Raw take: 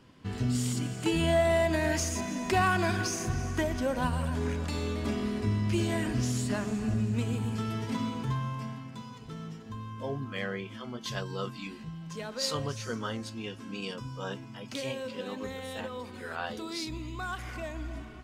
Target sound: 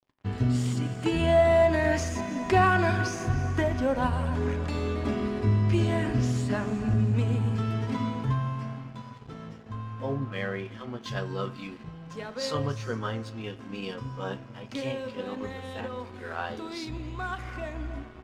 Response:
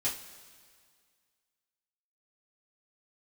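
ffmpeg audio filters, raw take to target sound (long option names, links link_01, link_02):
-filter_complex "[0:a]aeval=exprs='sgn(val(0))*max(abs(val(0))-0.00299,0)':channel_layout=same,aemphasis=mode=reproduction:type=50kf,asplit=2[link_01][link_02];[1:a]atrim=start_sample=2205,lowpass=2700[link_03];[link_02][link_03]afir=irnorm=-1:irlink=0,volume=-12dB[link_04];[link_01][link_04]amix=inputs=2:normalize=0,volume=2.5dB"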